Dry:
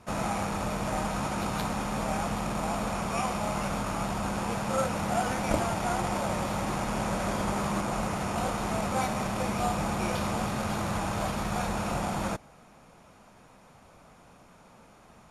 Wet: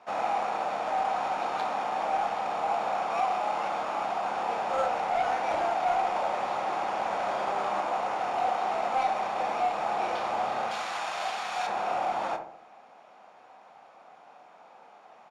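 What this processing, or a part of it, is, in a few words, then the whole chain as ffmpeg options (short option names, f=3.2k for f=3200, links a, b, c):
intercom: -filter_complex "[0:a]asettb=1/sr,asplit=3[a][b][c];[a]atrim=end=10.714[d];[b]atrim=start=10.71:end=11.67,asetpts=PTS-STARTPTS,afade=t=in:d=0.004:c=qsin,afade=t=out:st=0.956:d=0.004:c=qsin,tiltshelf=f=1.4k:g=-9[e];[c]atrim=start=11.666[f];[d][e]acrossfade=d=0.004:c1=hsin:c2=qsin[g];[g][f]acrossfade=d=0.004:c1=qsin:c2=hsin,highpass=490,lowpass=3.9k,equalizer=f=760:t=o:w=0.36:g=9.5,asoftclip=type=tanh:threshold=-21dB,asplit=2[h][i];[i]adelay=30,volume=-10dB[j];[h][j]amix=inputs=2:normalize=0,asplit=2[k][l];[l]adelay=68,lowpass=f=880:p=1,volume=-5dB,asplit=2[m][n];[n]adelay=68,lowpass=f=880:p=1,volume=0.54,asplit=2[o][p];[p]adelay=68,lowpass=f=880:p=1,volume=0.54,asplit=2[q][r];[r]adelay=68,lowpass=f=880:p=1,volume=0.54,asplit=2[s][t];[t]adelay=68,lowpass=f=880:p=1,volume=0.54,asplit=2[u][v];[v]adelay=68,lowpass=f=880:p=1,volume=0.54,asplit=2[w][x];[x]adelay=68,lowpass=f=880:p=1,volume=0.54[y];[k][m][o][q][s][u][w][y]amix=inputs=8:normalize=0"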